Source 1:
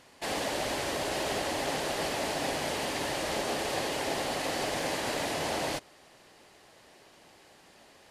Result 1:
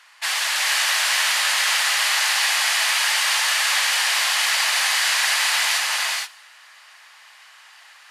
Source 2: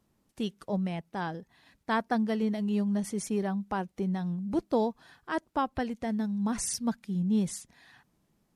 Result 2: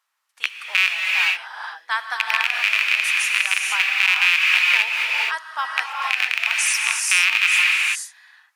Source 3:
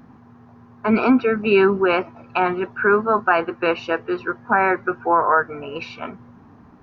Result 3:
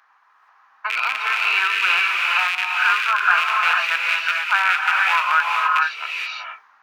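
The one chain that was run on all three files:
rattle on loud lows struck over -32 dBFS, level -13 dBFS; high-pass 1.2 kHz 24 dB/octave; gated-style reverb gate 500 ms rising, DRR -1 dB; in parallel at -2 dB: compression, threshold -30 dBFS; on the sum: tape noise reduction on one side only decoder only; normalise loudness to -18 LUFS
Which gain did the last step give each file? +8.5 dB, +6.5 dB, +1.0 dB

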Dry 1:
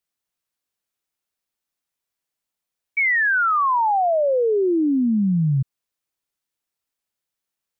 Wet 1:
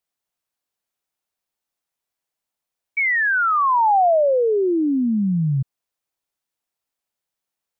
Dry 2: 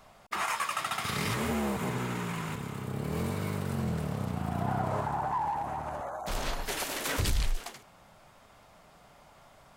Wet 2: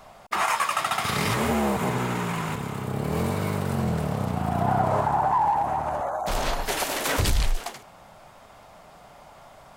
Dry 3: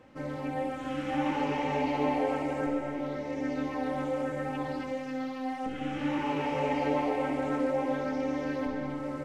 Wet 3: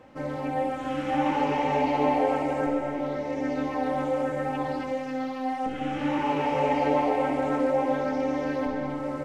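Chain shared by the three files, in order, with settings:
peaking EQ 740 Hz +4.5 dB 1.1 oct; peak normalisation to -12 dBFS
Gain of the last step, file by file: -1.0 dB, +5.5 dB, +2.5 dB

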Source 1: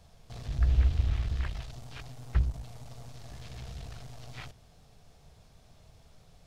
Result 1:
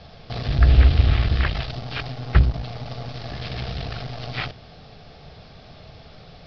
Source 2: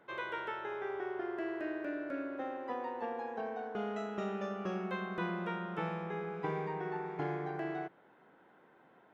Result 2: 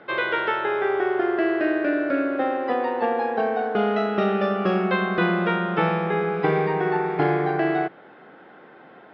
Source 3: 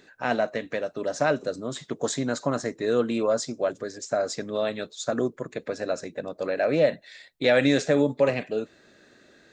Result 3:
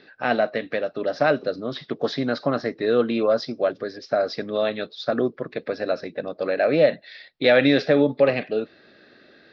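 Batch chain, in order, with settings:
steep low-pass 5.2 kHz 72 dB/octave; bass shelf 84 Hz -11 dB; band-stop 970 Hz, Q 9.2; normalise loudness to -23 LUFS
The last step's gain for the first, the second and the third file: +17.5 dB, +16.5 dB, +4.0 dB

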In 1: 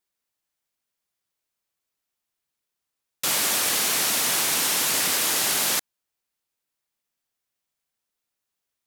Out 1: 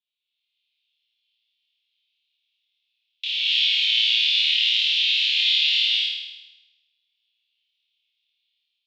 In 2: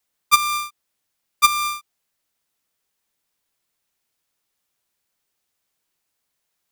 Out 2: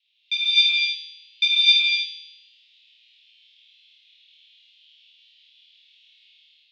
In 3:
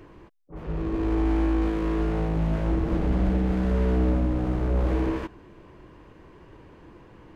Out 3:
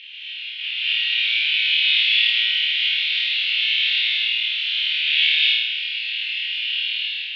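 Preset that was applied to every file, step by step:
elliptic low-pass 3.6 kHz, stop band 80 dB; compression 3:1, threshold -36 dBFS; gated-style reverb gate 300 ms rising, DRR -6 dB; level rider gain up to 6 dB; steep high-pass 2.6 kHz 48 dB/octave; on a send: flutter echo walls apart 4.5 m, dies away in 1 s; on the sum: normalise loudness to -18 LUFS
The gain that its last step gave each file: +2.5 dB, +14.5 dB, +29.0 dB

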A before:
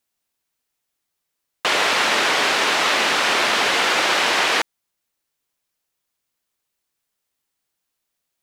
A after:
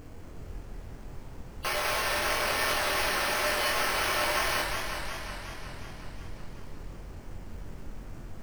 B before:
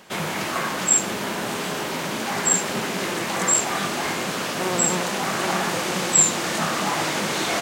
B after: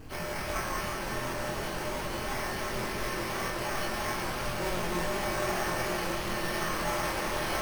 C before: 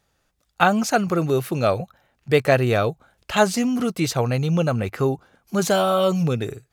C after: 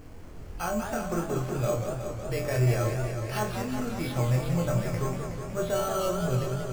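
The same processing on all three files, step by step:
knee-point frequency compression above 2.6 kHz 1.5:1; hum notches 50/100/150/200/250/300/350 Hz; peak limiter -12 dBFS; wow and flutter 28 cents; feedback comb 120 Hz, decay 0.21 s, harmonics odd, mix 80%; added noise brown -41 dBFS; on a send: flutter echo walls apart 4 m, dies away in 0.29 s; on the sum: careless resampling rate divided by 6×, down filtered, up hold; modulated delay 184 ms, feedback 76%, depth 176 cents, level -6.5 dB; trim -1 dB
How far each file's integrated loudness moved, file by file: -11.0 LU, -10.5 LU, -8.0 LU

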